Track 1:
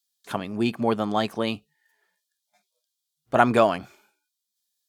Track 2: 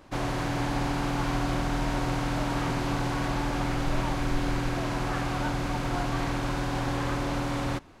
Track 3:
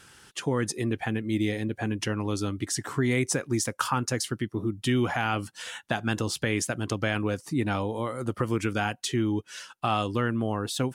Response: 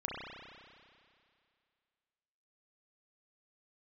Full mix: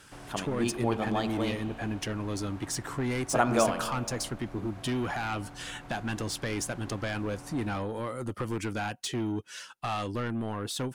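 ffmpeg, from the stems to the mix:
-filter_complex "[0:a]volume=-9dB,asplit=2[link_01][link_02];[link_02]volume=-10dB[link_03];[1:a]acrossover=split=3200|7200[link_04][link_05][link_06];[link_04]acompressor=threshold=-31dB:ratio=4[link_07];[link_05]acompressor=threshold=-60dB:ratio=4[link_08];[link_06]acompressor=threshold=-59dB:ratio=4[link_09];[link_07][link_08][link_09]amix=inputs=3:normalize=0,volume=-15dB,asplit=2[link_10][link_11];[link_11]volume=-9.5dB[link_12];[2:a]asoftclip=type=tanh:threshold=-24.5dB,volume=-1.5dB[link_13];[3:a]atrim=start_sample=2205[link_14];[link_03][link_12]amix=inputs=2:normalize=0[link_15];[link_15][link_14]afir=irnorm=-1:irlink=0[link_16];[link_01][link_10][link_13][link_16]amix=inputs=4:normalize=0"

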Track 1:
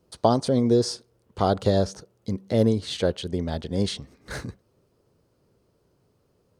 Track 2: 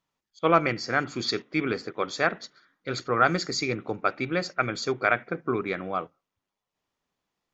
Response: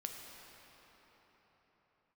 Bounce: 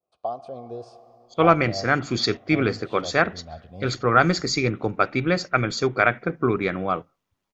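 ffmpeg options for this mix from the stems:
-filter_complex "[0:a]adynamicequalizer=threshold=0.00708:dfrequency=3200:dqfactor=0.74:tfrequency=3200:tqfactor=0.74:attack=5:release=100:ratio=0.375:range=2.5:mode=cutabove:tftype=bell,asplit=3[link_01][link_02][link_03];[link_01]bandpass=frequency=730:width_type=q:width=8,volume=0dB[link_04];[link_02]bandpass=frequency=1090:width_type=q:width=8,volume=-6dB[link_05];[link_03]bandpass=frequency=2440:width_type=q:width=8,volume=-9dB[link_06];[link_04][link_05][link_06]amix=inputs=3:normalize=0,asubboost=boost=9.5:cutoff=130,volume=-7dB,asplit=2[link_07][link_08];[link_08]volume=-9dB[link_09];[1:a]adelay=950,volume=-2dB[link_10];[2:a]atrim=start_sample=2205[link_11];[link_09][link_11]afir=irnorm=-1:irlink=0[link_12];[link_07][link_10][link_12]amix=inputs=3:normalize=0,lowshelf=frequency=130:gain=10.5,dynaudnorm=framelen=110:gausssize=7:maxgain=6.5dB"

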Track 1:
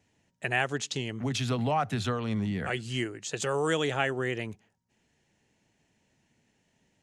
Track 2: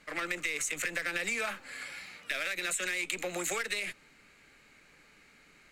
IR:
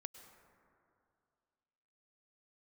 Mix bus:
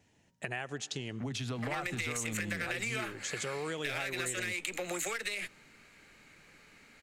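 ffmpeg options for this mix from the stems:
-filter_complex "[0:a]acompressor=threshold=-39dB:ratio=2.5,volume=0.5dB,asplit=2[link_01][link_02];[link_02]volume=-8dB[link_03];[1:a]adelay=1550,volume=1dB[link_04];[2:a]atrim=start_sample=2205[link_05];[link_03][link_05]afir=irnorm=-1:irlink=0[link_06];[link_01][link_04][link_06]amix=inputs=3:normalize=0,acompressor=threshold=-33dB:ratio=3"

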